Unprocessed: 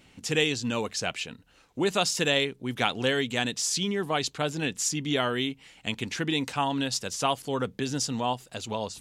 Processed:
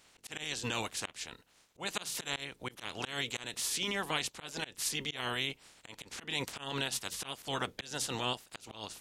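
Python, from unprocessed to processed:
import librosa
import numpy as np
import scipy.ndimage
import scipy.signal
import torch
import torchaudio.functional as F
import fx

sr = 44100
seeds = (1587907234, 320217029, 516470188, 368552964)

y = fx.spec_clip(x, sr, under_db=21)
y = fx.auto_swell(y, sr, attack_ms=192.0)
y = F.gain(torch.from_numpy(y), -6.0).numpy()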